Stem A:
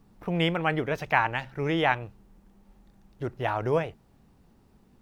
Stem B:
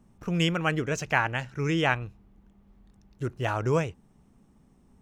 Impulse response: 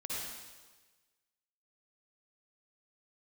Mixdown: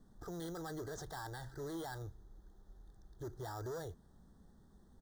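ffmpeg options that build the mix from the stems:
-filter_complex "[0:a]equalizer=f=125:t=o:w=1:g=-7,equalizer=f=250:t=o:w=1:g=-7,equalizer=f=500:t=o:w=1:g=-4,equalizer=f=1k:t=o:w=1:g=-9,equalizer=f=2k:t=o:w=1:g=-8,equalizer=f=4k:t=o:w=1:g=-5,acrusher=samples=7:mix=1:aa=0.000001,volume=-0.5dB,asplit=2[a][b];[1:a]adelay=2.4,volume=-8dB[c];[b]apad=whole_len=221282[d];[c][d]sidechaincompress=threshold=-38dB:ratio=8:attack=16:release=150[e];[a][e]amix=inputs=2:normalize=0,asoftclip=type=hard:threshold=-32.5dB,asuperstop=centerf=2500:order=8:qfactor=1.7,alimiter=level_in=14dB:limit=-24dB:level=0:latency=1:release=32,volume=-14dB"

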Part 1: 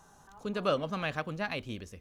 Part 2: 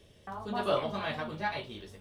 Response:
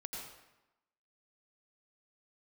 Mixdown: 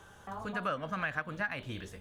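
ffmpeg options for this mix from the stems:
-filter_complex "[0:a]equalizer=f=400:t=o:w=0.67:g=-8,equalizer=f=1.6k:t=o:w=0.67:g=11,equalizer=f=4k:t=o:w=0.67:g=-10,volume=-0.5dB,asplit=2[a][b];[1:a]bandreject=f=5.6k:w=6.4,acompressor=threshold=-35dB:ratio=6,volume=0dB[c];[b]apad=whole_len=88470[d];[c][d]sidechaincompress=threshold=-38dB:ratio=8:attack=49:release=232[e];[a][e]amix=inputs=2:normalize=0,acompressor=threshold=-32dB:ratio=2.5"

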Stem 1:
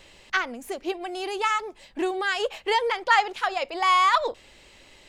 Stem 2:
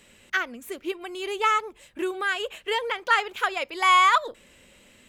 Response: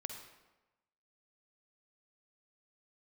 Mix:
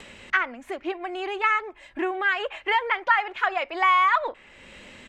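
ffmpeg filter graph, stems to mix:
-filter_complex "[0:a]lowpass=f=2.2k:w=0.5412,lowpass=f=2.2k:w=1.3066,tiltshelf=f=860:g=-8.5,volume=1.5dB[a];[1:a]lowpass=5.5k,acompressor=mode=upward:threshold=-24dB:ratio=2.5,adelay=2.7,volume=-8dB[b];[a][b]amix=inputs=2:normalize=0,acompressor=threshold=-16dB:ratio=6"

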